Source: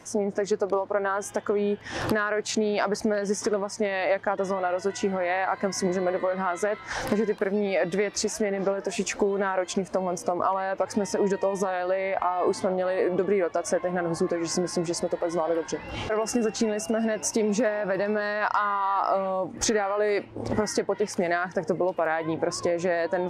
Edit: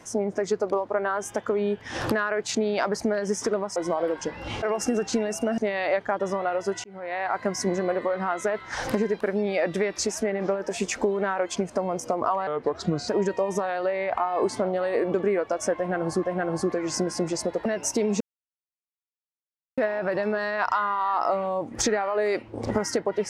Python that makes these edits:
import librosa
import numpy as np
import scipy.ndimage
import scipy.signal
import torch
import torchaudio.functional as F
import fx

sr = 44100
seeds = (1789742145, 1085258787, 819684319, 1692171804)

y = fx.edit(x, sr, fx.fade_in_span(start_s=5.02, length_s=0.5),
    fx.speed_span(start_s=10.65, length_s=0.48, speed=0.78),
    fx.repeat(start_s=13.81, length_s=0.47, count=2),
    fx.move(start_s=15.23, length_s=1.82, to_s=3.76),
    fx.insert_silence(at_s=17.6, length_s=1.57), tone=tone)